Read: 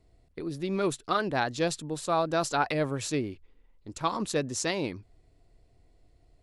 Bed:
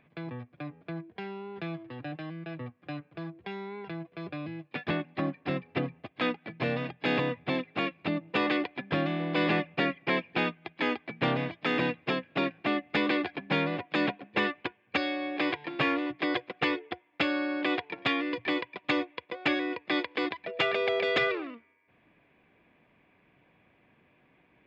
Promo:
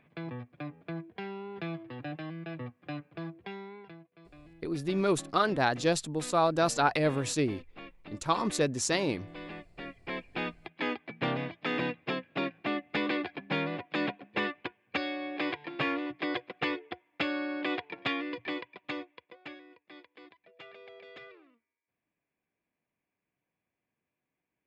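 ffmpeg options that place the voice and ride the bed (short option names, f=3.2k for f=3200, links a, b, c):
-filter_complex "[0:a]adelay=4250,volume=1dB[a];[1:a]volume=13dB,afade=t=out:st=3.28:d=0.78:silence=0.149624,afade=t=in:st=9.77:d=0.93:silence=0.211349,afade=t=out:st=18.05:d=1.58:silence=0.105925[b];[a][b]amix=inputs=2:normalize=0"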